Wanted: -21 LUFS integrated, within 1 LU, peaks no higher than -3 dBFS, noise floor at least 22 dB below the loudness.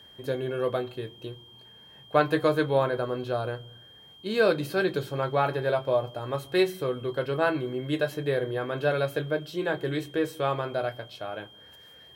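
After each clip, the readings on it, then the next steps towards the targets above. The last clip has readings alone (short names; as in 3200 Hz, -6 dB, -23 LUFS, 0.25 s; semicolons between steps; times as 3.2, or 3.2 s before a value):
steady tone 3200 Hz; tone level -50 dBFS; loudness -28.0 LUFS; peak -8.0 dBFS; loudness target -21.0 LUFS
-> notch 3200 Hz, Q 30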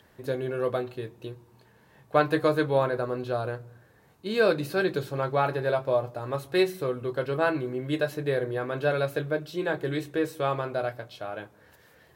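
steady tone none; loudness -28.0 LUFS; peak -8.0 dBFS; loudness target -21.0 LUFS
-> gain +7 dB; limiter -3 dBFS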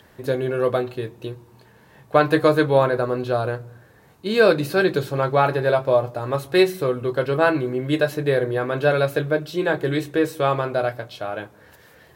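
loudness -21.0 LUFS; peak -3.0 dBFS; noise floor -52 dBFS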